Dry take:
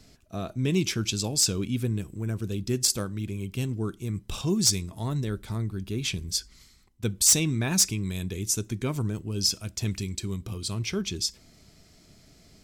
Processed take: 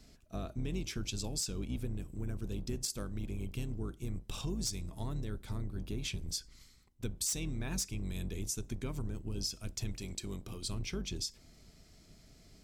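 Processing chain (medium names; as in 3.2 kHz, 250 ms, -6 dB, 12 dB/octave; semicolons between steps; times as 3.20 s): octave divider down 2 oct, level +1 dB; 9.98–10.64 s: bass shelf 190 Hz -9 dB; compression 4:1, threshold -29 dBFS, peak gain reduction 11 dB; trim -5.5 dB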